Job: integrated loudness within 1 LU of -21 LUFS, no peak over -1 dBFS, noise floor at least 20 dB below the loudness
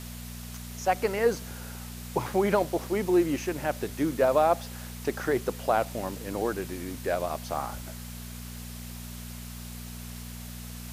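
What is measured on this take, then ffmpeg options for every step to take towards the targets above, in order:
hum 60 Hz; highest harmonic 240 Hz; hum level -39 dBFS; noise floor -41 dBFS; noise floor target -49 dBFS; loudness -28.5 LUFS; peak level -10.5 dBFS; loudness target -21.0 LUFS
-> -af "bandreject=f=60:t=h:w=4,bandreject=f=120:t=h:w=4,bandreject=f=180:t=h:w=4,bandreject=f=240:t=h:w=4"
-af "afftdn=nr=8:nf=-41"
-af "volume=2.37"

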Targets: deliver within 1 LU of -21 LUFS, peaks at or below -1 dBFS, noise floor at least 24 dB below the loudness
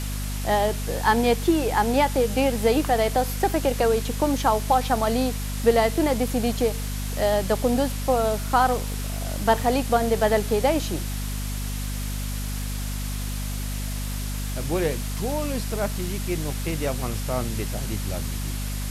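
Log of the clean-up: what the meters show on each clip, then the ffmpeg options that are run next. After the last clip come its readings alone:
hum 50 Hz; highest harmonic 250 Hz; hum level -27 dBFS; noise floor -29 dBFS; noise floor target -49 dBFS; loudness -24.5 LUFS; peak level -5.5 dBFS; loudness target -21.0 LUFS
-> -af "bandreject=f=50:t=h:w=4,bandreject=f=100:t=h:w=4,bandreject=f=150:t=h:w=4,bandreject=f=200:t=h:w=4,bandreject=f=250:t=h:w=4"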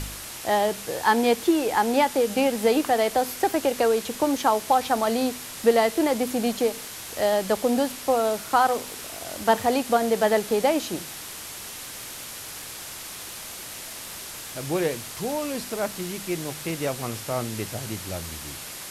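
hum not found; noise floor -38 dBFS; noise floor target -49 dBFS
-> -af "afftdn=nr=11:nf=-38"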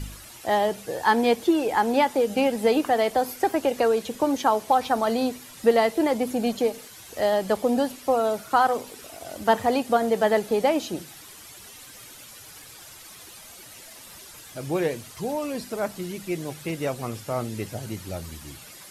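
noise floor -45 dBFS; noise floor target -49 dBFS
-> -af "afftdn=nr=6:nf=-45"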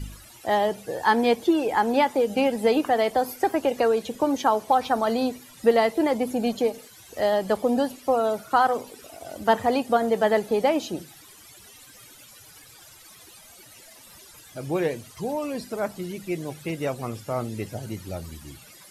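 noise floor -49 dBFS; loudness -24.5 LUFS; peak level -6.0 dBFS; loudness target -21.0 LUFS
-> -af "volume=1.5"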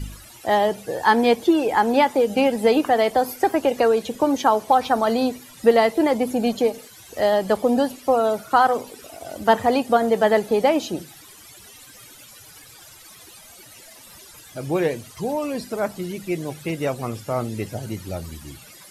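loudness -21.0 LUFS; peak level -2.5 dBFS; noise floor -46 dBFS

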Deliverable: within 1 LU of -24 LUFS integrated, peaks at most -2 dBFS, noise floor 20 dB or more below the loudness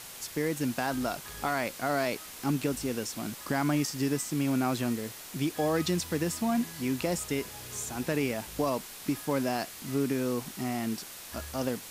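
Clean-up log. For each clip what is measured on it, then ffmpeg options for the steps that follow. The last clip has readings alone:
noise floor -45 dBFS; noise floor target -52 dBFS; loudness -31.5 LUFS; peak level -17.5 dBFS; loudness target -24.0 LUFS
-> -af "afftdn=nr=7:nf=-45"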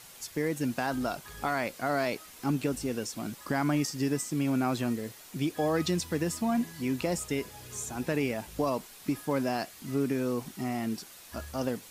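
noise floor -51 dBFS; noise floor target -52 dBFS
-> -af "afftdn=nr=6:nf=-51"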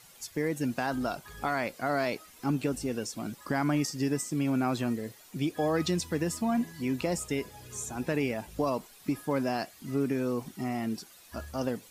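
noise floor -55 dBFS; loudness -31.5 LUFS; peak level -17.5 dBFS; loudness target -24.0 LUFS
-> -af "volume=2.37"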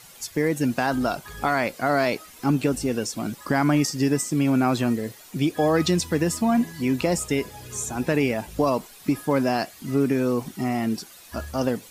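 loudness -24.0 LUFS; peak level -10.0 dBFS; noise floor -47 dBFS

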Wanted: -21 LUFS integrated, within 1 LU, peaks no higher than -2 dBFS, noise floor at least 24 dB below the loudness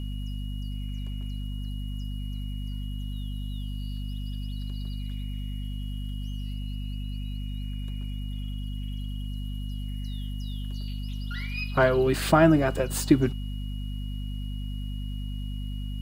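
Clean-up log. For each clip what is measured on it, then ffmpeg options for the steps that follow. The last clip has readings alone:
hum 50 Hz; highest harmonic 250 Hz; hum level -30 dBFS; steady tone 2.9 kHz; tone level -48 dBFS; loudness -30.5 LUFS; peak level -5.0 dBFS; loudness target -21.0 LUFS
-> -af "bandreject=f=50:t=h:w=4,bandreject=f=100:t=h:w=4,bandreject=f=150:t=h:w=4,bandreject=f=200:t=h:w=4,bandreject=f=250:t=h:w=4"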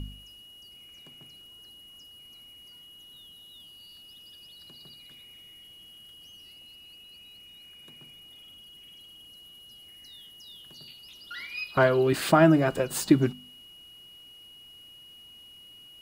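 hum not found; steady tone 2.9 kHz; tone level -48 dBFS
-> -af "bandreject=f=2900:w=30"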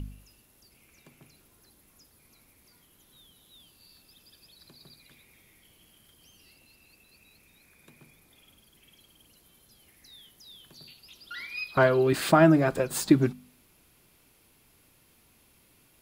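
steady tone not found; loudness -23.5 LUFS; peak level -6.0 dBFS; loudness target -21.0 LUFS
-> -af "volume=1.33"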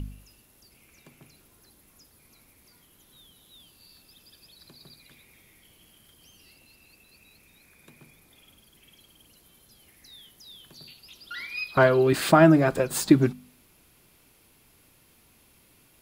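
loudness -21.0 LUFS; peak level -3.5 dBFS; noise floor -60 dBFS

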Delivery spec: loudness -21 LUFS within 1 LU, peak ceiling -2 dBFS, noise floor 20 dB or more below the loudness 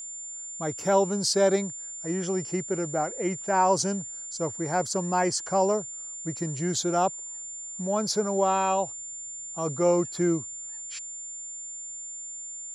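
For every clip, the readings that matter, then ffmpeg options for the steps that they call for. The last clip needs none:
steady tone 7.2 kHz; tone level -36 dBFS; loudness -28.0 LUFS; peak level -10.0 dBFS; loudness target -21.0 LUFS
-> -af "bandreject=f=7200:w=30"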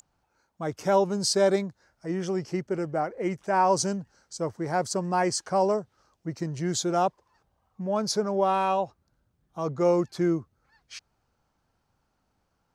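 steady tone not found; loudness -27.0 LUFS; peak level -10.5 dBFS; loudness target -21.0 LUFS
-> -af "volume=2"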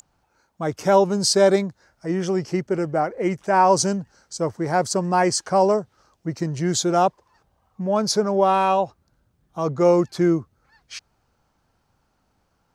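loudness -21.0 LUFS; peak level -4.5 dBFS; noise floor -69 dBFS

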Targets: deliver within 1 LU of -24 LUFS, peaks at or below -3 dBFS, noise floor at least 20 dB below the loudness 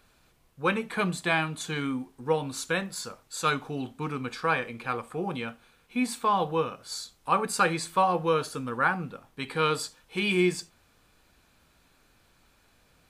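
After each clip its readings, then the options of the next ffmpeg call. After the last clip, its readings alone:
loudness -29.0 LUFS; peak level -10.0 dBFS; loudness target -24.0 LUFS
-> -af "volume=1.78"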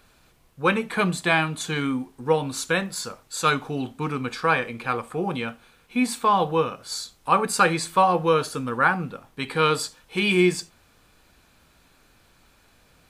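loudness -24.0 LUFS; peak level -5.0 dBFS; noise floor -59 dBFS

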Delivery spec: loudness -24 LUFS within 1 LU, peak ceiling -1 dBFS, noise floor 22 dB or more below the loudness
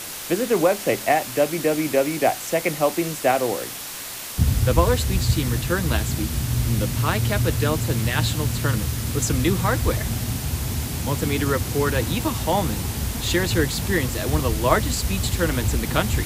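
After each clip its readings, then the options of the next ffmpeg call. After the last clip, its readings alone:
noise floor -33 dBFS; noise floor target -45 dBFS; loudness -22.5 LUFS; peak level -3.5 dBFS; loudness target -24.0 LUFS
-> -af "afftdn=nr=12:nf=-33"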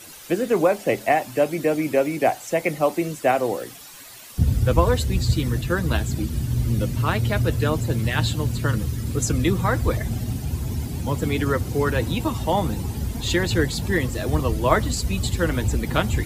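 noise floor -42 dBFS; noise floor target -45 dBFS
-> -af "afftdn=nr=6:nf=-42"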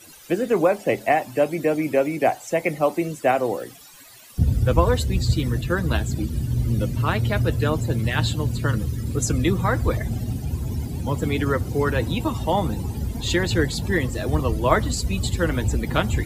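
noise floor -45 dBFS; loudness -23.0 LUFS; peak level -3.5 dBFS; loudness target -24.0 LUFS
-> -af "volume=0.891"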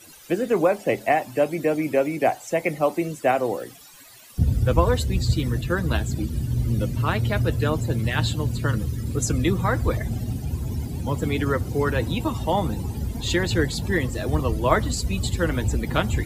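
loudness -24.0 LUFS; peak level -4.5 dBFS; noise floor -46 dBFS

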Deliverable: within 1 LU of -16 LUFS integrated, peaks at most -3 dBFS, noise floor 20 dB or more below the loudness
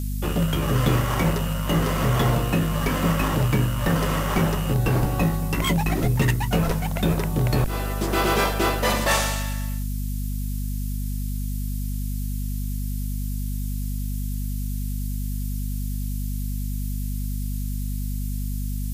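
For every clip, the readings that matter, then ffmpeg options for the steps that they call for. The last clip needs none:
hum 50 Hz; highest harmonic 250 Hz; hum level -25 dBFS; noise floor -27 dBFS; noise floor target -45 dBFS; loudness -25.0 LUFS; peak level -10.0 dBFS; loudness target -16.0 LUFS
-> -af "bandreject=f=50:t=h:w=4,bandreject=f=100:t=h:w=4,bandreject=f=150:t=h:w=4,bandreject=f=200:t=h:w=4,bandreject=f=250:t=h:w=4"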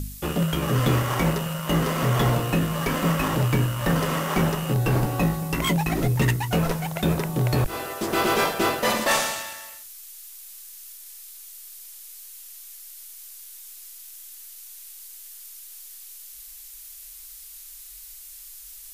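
hum not found; noise floor -43 dBFS; noise floor target -44 dBFS
-> -af "afftdn=nr=6:nf=-43"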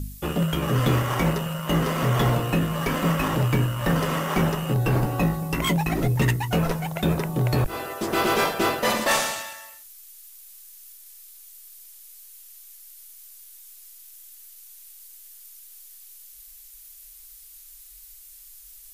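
noise floor -47 dBFS; loudness -23.5 LUFS; peak level -11.5 dBFS; loudness target -16.0 LUFS
-> -af "volume=2.37"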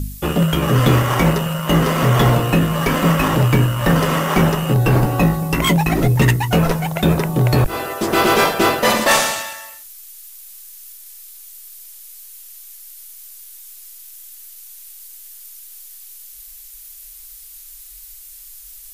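loudness -16.0 LUFS; peak level -4.0 dBFS; noise floor -39 dBFS

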